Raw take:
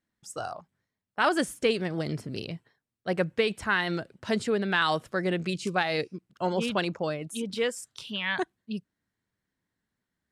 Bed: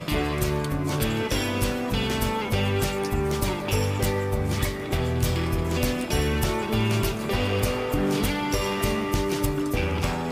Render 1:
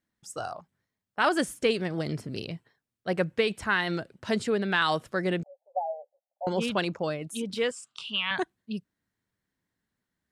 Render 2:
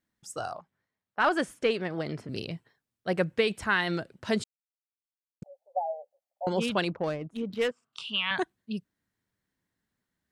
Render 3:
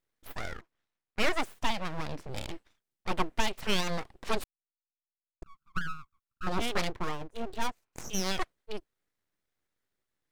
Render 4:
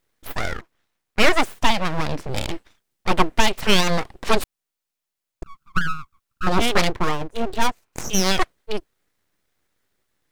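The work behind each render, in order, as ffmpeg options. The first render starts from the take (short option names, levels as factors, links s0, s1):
-filter_complex "[0:a]asettb=1/sr,asplit=3[s0][s1][s2];[s0]atrim=end=5.434[s3];[s1]atrim=start=5.43:end=6.47,asetpts=PTS-STARTPTS,afade=t=in:d=0.004:c=qsin,afade=t=out:st=1.036:d=0.004:c=qsin,asuperpass=centerf=680:order=12:qfactor=2.2[s4];[s2]atrim=start=6.466[s5];[s3][s4]acrossfade=d=0.004:c1=hsin:c2=qsin[s6];[s6][s5]acrossfade=d=0.004:c1=qsin:c2=hsin,asettb=1/sr,asplit=3[s7][s8][s9];[s7]atrim=end=7.714[s10];[s8]atrim=start=7.71:end=8.31,asetpts=PTS-STARTPTS,afade=t=in:d=0.004:c=qsin,afade=t=out:st=0.596:d=0.004:c=qsin,highpass=230,equalizer=f=340:t=q:w=4:g=-9,equalizer=f=530:t=q:w=4:g=-9,equalizer=f=1200:t=q:w=4:g=9,equalizer=f=1800:t=q:w=4:g=-9,equalizer=f=2800:t=q:w=4:g=8,equalizer=f=6000:t=q:w=4:g=-5,lowpass=f=8600:w=0.5412,lowpass=f=8600:w=1.3066[s11];[s9]atrim=start=8.306[s12];[s10][s11]acrossfade=d=0.004:c1=hsin:c2=qsin[s13];[s13][s12]acrossfade=d=0.004:c1=qsin:c2=hsin"
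-filter_complex "[0:a]asettb=1/sr,asplit=3[s0][s1][s2];[s0]atrim=end=0.584[s3];[s1]atrim=start=0.58:end=2.29,asetpts=PTS-STARTPTS,afade=t=in:d=0.004:c=qsin,afade=t=out:st=1.706:d=0.004:c=qsin,asplit=2[s4][s5];[s5]highpass=f=720:p=1,volume=2.24,asoftclip=type=tanh:threshold=0.251[s6];[s4][s6]amix=inputs=2:normalize=0,lowpass=f=1800:p=1,volume=0.501[s7];[s2]atrim=start=2.286[s8];[s3][s7]acrossfade=d=0.004:c1=hsin:c2=qsin[s9];[s9][s8]acrossfade=d=0.004:c1=qsin:c2=hsin,asettb=1/sr,asplit=3[s10][s11][s12];[s10]atrim=end=6.904[s13];[s11]atrim=start=6.9:end=7.93,asetpts=PTS-STARTPTS,afade=t=in:d=0.004:c=qsin,afade=t=out:st=1.026:d=0.004:c=qsin,adynamicsmooth=sensitivity=3.5:basefreq=1200[s14];[s12]atrim=start=7.926[s15];[s13][s14]acrossfade=d=0.004:c1=hsin:c2=qsin[s16];[s16][s15]acrossfade=d=0.004:c1=qsin:c2=hsin,asplit=3[s17][s18][s19];[s17]atrim=end=4.44,asetpts=PTS-STARTPTS,afade=t=out:st=4.436:d=0.004:c=hsin[s20];[s18]atrim=start=4.44:end=5.42,asetpts=PTS-STARTPTS,volume=0[s21];[s19]atrim=start=5.42,asetpts=PTS-STARTPTS,afade=t=in:d=0.004:c=hsin[s22];[s20][s21][s22]concat=n=3:v=0:a=1"
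-af "aeval=exprs='abs(val(0))':c=same"
-af "volume=3.98,alimiter=limit=0.891:level=0:latency=1"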